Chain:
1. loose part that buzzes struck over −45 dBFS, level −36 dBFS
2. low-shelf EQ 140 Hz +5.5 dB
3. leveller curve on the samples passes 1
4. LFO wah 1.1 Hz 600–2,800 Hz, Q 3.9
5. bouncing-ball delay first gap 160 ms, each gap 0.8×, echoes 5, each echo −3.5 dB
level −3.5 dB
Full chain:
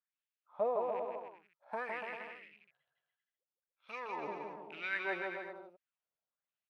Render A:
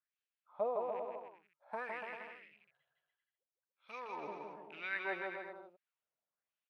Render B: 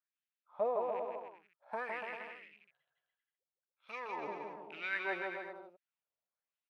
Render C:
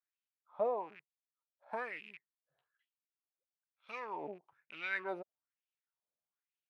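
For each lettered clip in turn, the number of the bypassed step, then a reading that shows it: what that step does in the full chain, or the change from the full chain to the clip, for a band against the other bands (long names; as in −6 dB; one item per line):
3, change in integrated loudness −2.5 LU
2, 125 Hz band −2.0 dB
5, change in crest factor +2.5 dB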